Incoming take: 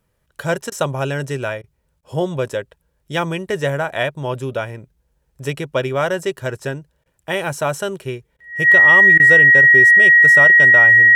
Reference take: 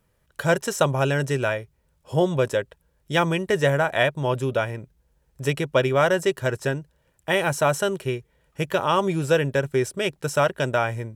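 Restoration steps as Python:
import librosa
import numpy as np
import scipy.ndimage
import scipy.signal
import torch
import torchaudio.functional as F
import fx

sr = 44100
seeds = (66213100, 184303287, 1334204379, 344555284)

y = fx.notch(x, sr, hz=1900.0, q=30.0)
y = fx.fix_interpolate(y, sr, at_s=(0.7, 1.62, 2.01, 7.04, 8.37, 9.18), length_ms=17.0)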